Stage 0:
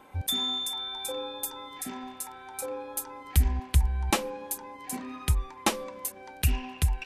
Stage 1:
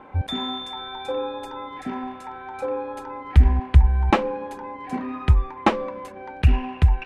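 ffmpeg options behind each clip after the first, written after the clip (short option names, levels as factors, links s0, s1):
-af "lowpass=1900,volume=2.82"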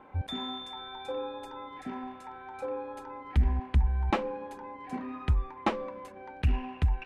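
-af "asoftclip=type=tanh:threshold=0.422,volume=0.398"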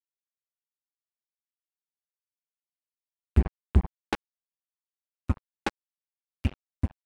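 -af "acrusher=bits=2:mix=0:aa=0.5,volume=2.51"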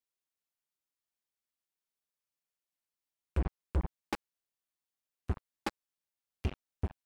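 -af "asoftclip=type=tanh:threshold=0.0531,volume=1.26"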